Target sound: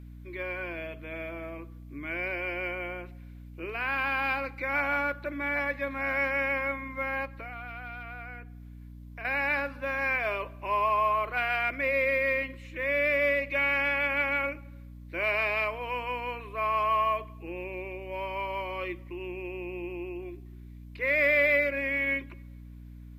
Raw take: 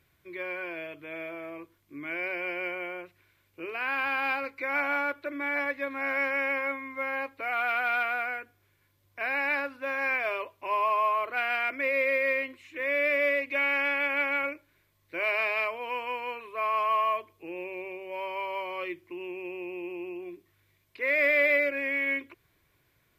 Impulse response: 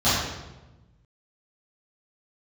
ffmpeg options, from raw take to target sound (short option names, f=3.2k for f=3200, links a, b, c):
-filter_complex "[0:a]asettb=1/sr,asplit=3[a][b][c];[a]atrim=end=7.254[d];[b]atrim=start=7.25:end=9.25,asetpts=PTS-STARTPTS,afade=t=in:d=0.004:c=qsin,afade=t=out:st=1.996:d=0.004:c=qsin,acompressor=threshold=-41dB:ratio=5[e];[c]atrim=start=9.246[f];[d][e]acrossfade=d=0.004:c1=hsin:c2=qsin[g];[g][f]acrossfade=d=0.004:c1=qsin:c2=hsin,asplit=2[h][i];[1:a]atrim=start_sample=2205[j];[i][j]afir=irnorm=-1:irlink=0,volume=-37.5dB[k];[h][k]amix=inputs=2:normalize=0,aeval=exprs='val(0)+0.00631*(sin(2*PI*60*n/s)+sin(2*PI*2*60*n/s)/2+sin(2*PI*3*60*n/s)/3+sin(2*PI*4*60*n/s)/4+sin(2*PI*5*60*n/s)/5)':c=same"